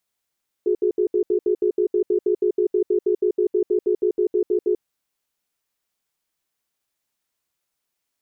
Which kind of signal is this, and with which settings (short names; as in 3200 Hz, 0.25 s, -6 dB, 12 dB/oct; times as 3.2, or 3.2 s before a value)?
cadence 363 Hz, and 419 Hz, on 0.09 s, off 0.07 s, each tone -19 dBFS 4.16 s